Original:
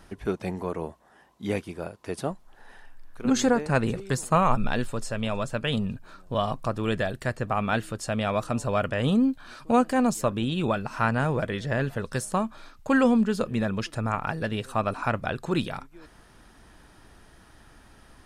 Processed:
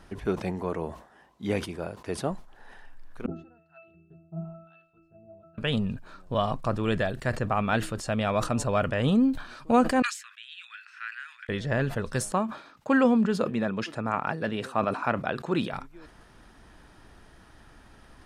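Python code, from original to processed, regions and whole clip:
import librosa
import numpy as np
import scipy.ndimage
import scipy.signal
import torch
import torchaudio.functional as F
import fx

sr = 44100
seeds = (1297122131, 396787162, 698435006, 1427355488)

y = fx.chain(x, sr, fx.harmonic_tremolo(hz=1.0, depth_pct=100, crossover_hz=870.0),
    fx.peak_eq(hz=4000.0, db=6.5, octaves=0.85),
    fx.octave_resonator(note='E', decay_s=0.63), at=(3.26, 5.58))
y = fx.chain(y, sr, fx.steep_highpass(hz=1600.0, slope=48),
    fx.tilt_eq(slope=-4.5), at=(10.02, 11.49))
y = fx.chain(y, sr, fx.highpass(hz=170.0, slope=12),
    fx.high_shelf(hz=4500.0, db=-6.0), at=(12.32, 15.73))
y = fx.high_shelf(y, sr, hz=7500.0, db=-7.5)
y = fx.sustainer(y, sr, db_per_s=120.0)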